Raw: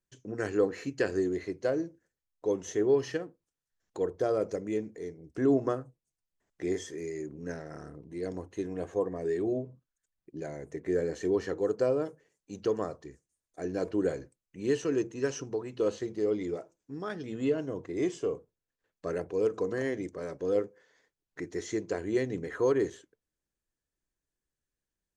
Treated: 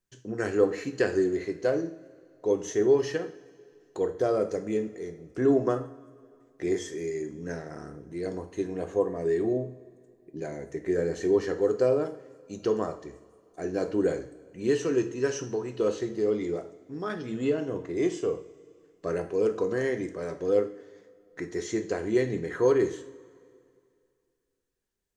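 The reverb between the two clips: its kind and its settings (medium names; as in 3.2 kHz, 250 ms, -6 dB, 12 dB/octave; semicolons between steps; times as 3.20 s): two-slope reverb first 0.48 s, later 2.4 s, from -18 dB, DRR 6.5 dB; trim +2.5 dB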